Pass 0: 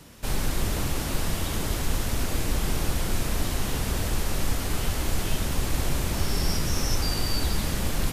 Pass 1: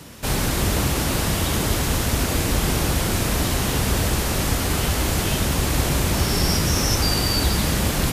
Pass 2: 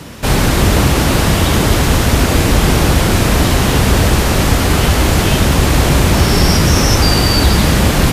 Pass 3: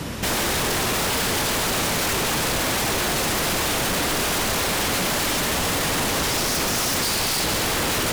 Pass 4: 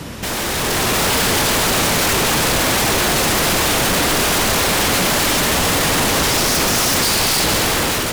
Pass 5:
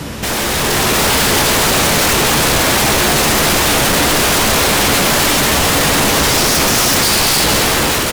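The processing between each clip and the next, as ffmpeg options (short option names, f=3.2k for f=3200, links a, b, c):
-af "highpass=50,volume=8dB"
-af "apsyclip=12dB,highshelf=f=5.5k:g=-7.5,volume=-1.5dB"
-af "alimiter=limit=-7.5dB:level=0:latency=1:release=13,aeval=exprs='0.106*(abs(mod(val(0)/0.106+3,4)-2)-1)':c=same,volume=1.5dB"
-af "dynaudnorm=f=270:g=5:m=6.5dB"
-filter_complex "[0:a]asplit=2[a][b];[b]asoftclip=type=hard:threshold=-22dB,volume=-8.5dB[c];[a][c]amix=inputs=2:normalize=0,asplit=2[d][e];[e]adelay=14,volume=-10.5dB[f];[d][f]amix=inputs=2:normalize=0,volume=2dB"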